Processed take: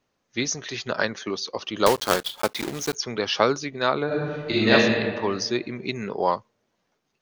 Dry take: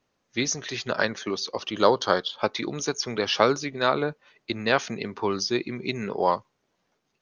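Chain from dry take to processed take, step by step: 1.86–2.96 s: block-companded coder 3-bit; 4.06–4.71 s: reverb throw, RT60 1.8 s, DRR -10.5 dB

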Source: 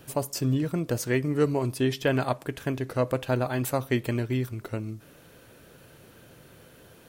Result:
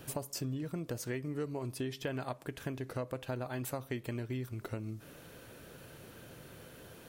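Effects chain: compression 4:1, threshold -37 dBFS, peak gain reduction 16 dB

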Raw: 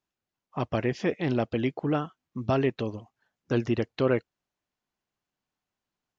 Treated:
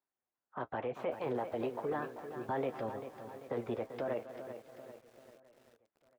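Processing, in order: three-band isolator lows -14 dB, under 300 Hz, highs -12 dB, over 2.2 kHz; flange 1.1 Hz, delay 7.2 ms, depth 1.8 ms, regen -46%; peaking EQ 5.7 kHz -14.5 dB 2.7 oct; speakerphone echo 240 ms, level -18 dB; peak limiter -29.5 dBFS, peak gain reduction 9.5 dB; on a send: feedback delay 674 ms, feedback 45%, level -21 dB; on the sum: formant shift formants +4 st; bit-crushed delay 391 ms, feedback 55%, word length 10-bit, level -10 dB; trim +2.5 dB

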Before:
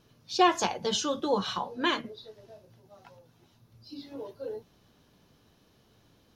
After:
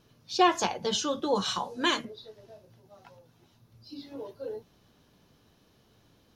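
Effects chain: 1.35–2.05 s: peaking EQ 7.8 kHz +14 dB 1.1 oct

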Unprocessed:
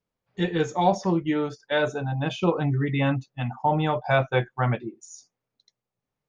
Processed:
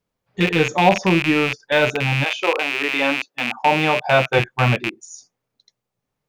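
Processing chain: rattle on loud lows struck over -38 dBFS, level -16 dBFS; 2.23–4.38 s: high-pass 520 Hz -> 130 Hz 24 dB/octave; trim +6 dB

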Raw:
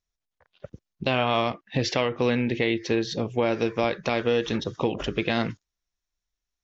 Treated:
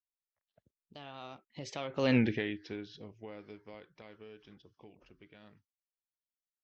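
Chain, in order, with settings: Doppler pass-by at 2.17 s, 35 m/s, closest 2.5 m

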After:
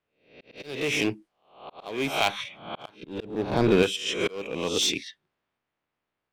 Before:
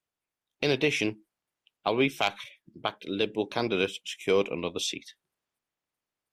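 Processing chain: reverse spectral sustain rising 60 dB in 0.52 s; 3.03–3.83 s: tilt EQ -3.5 dB/octave; level-controlled noise filter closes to 2.8 kHz, open at -23 dBFS; in parallel at -6 dB: wavefolder -25 dBFS; on the sum: slow attack 503 ms; trim +2 dB

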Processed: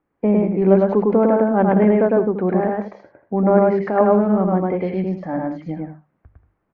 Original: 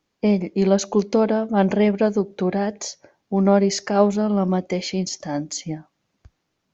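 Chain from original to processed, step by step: low-pass 1.8 kHz 24 dB/octave; hum notches 50/100/150/200 Hz; loudspeakers at several distances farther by 36 m -1 dB, 63 m -11 dB; trim +1.5 dB

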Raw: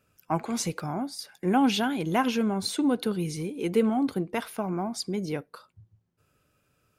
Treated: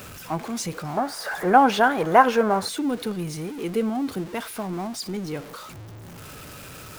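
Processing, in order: jump at every zero crossing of -33 dBFS; 0.97–2.69 s: high-order bell 890 Hz +13 dB 2.4 oct; trim -2 dB

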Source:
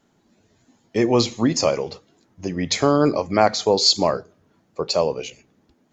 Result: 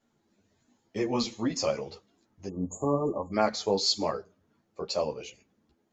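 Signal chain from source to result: spectral selection erased 2.48–3.33 s, 1.2–6.6 kHz; three-phase chorus; trim -6.5 dB

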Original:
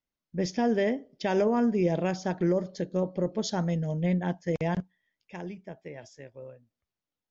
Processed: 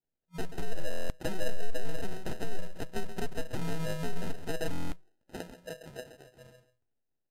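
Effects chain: one-sided wavefolder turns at -27 dBFS; peaking EQ 82 Hz -14.5 dB 2.5 oct; hum notches 50/100/150 Hz; in parallel at -1 dB: level held to a coarse grid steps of 23 dB; on the sum: low-pass that closes with the level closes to 470 Hz, closed at -25.5 dBFS; treble shelf 2.2 kHz -7 dB; feedback comb 630 Hz, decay 0.34 s, mix 70%; on a send: delay 133 ms -11 dB; on the sum: FFT band-reject 180–600 Hz; sample-and-hold 39×; buffer glitch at 0.89/4.71 s, samples 1024, times 8; trim +11 dB; Vorbis 128 kbps 32 kHz

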